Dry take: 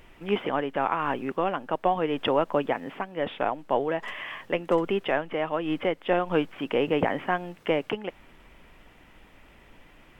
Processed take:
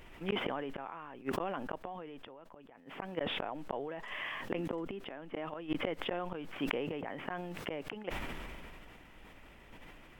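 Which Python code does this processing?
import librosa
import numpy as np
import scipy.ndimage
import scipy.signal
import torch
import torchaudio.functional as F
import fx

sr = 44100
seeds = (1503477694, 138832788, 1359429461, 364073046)

y = fx.peak_eq(x, sr, hz=270.0, db=6.5, octaves=0.74, at=(4.39, 5.48))
y = fx.rider(y, sr, range_db=4, speed_s=2.0)
y = fx.gate_flip(y, sr, shuts_db=-18.0, range_db=-36)
y = fx.sustainer(y, sr, db_per_s=21.0)
y = F.gain(torch.from_numpy(y), -4.0).numpy()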